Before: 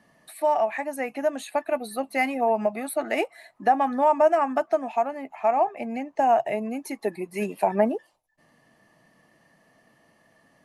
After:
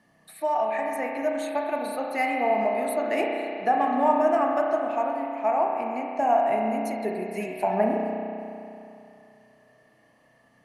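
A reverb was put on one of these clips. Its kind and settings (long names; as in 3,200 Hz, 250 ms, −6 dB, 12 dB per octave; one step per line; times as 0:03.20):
spring reverb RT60 2.8 s, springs 32 ms, chirp 35 ms, DRR −0.5 dB
level −3.5 dB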